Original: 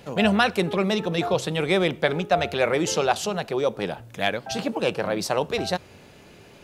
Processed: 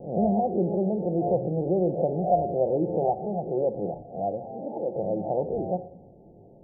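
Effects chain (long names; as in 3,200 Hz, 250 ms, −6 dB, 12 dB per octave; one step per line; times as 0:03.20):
peak hold with a rise ahead of every peak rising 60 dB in 0.44 s
Butterworth low-pass 820 Hz 96 dB per octave
0:04.45–0:04.96: spectral tilt +4 dB per octave
rectangular room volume 1,900 cubic metres, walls furnished, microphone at 0.84 metres
level −3.5 dB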